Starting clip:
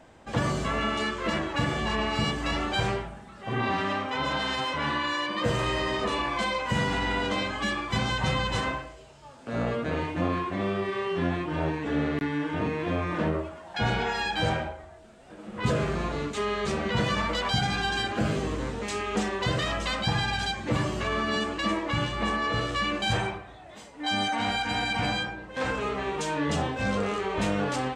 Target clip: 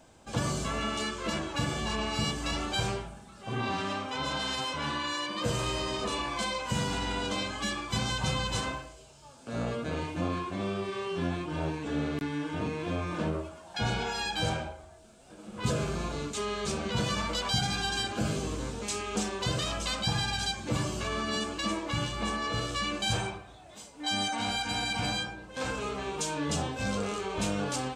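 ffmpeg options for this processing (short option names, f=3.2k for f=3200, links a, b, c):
-af "bass=f=250:g=2,treble=f=4k:g=11,bandreject=f=1.9k:w=7.1,volume=-5dB"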